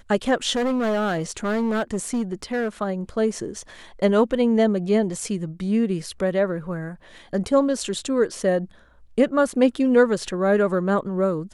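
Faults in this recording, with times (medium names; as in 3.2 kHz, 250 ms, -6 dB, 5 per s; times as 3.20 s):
0.55–2.68 s: clipped -19.5 dBFS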